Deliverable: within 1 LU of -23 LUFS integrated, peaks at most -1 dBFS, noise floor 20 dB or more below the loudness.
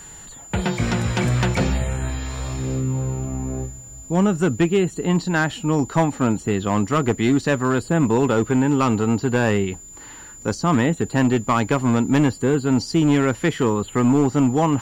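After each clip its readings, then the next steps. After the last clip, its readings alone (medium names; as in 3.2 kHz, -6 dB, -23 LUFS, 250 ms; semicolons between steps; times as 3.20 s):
clipped samples 1.2%; clipping level -11.0 dBFS; steady tone 7.1 kHz; tone level -39 dBFS; loudness -20.5 LUFS; peak level -11.0 dBFS; loudness target -23.0 LUFS
-> clip repair -11 dBFS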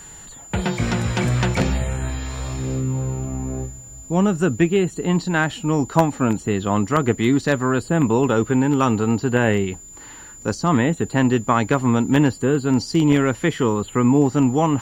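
clipped samples 0.0%; steady tone 7.1 kHz; tone level -39 dBFS
-> band-stop 7.1 kHz, Q 30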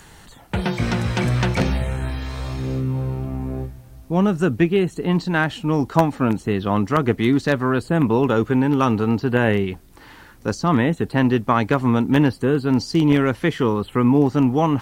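steady tone not found; loudness -20.0 LUFS; peak level -2.0 dBFS; loudness target -23.0 LUFS
-> trim -3 dB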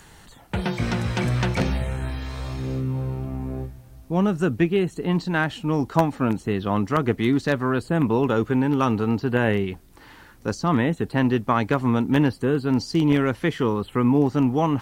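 loudness -23.0 LUFS; peak level -5.0 dBFS; noise floor -49 dBFS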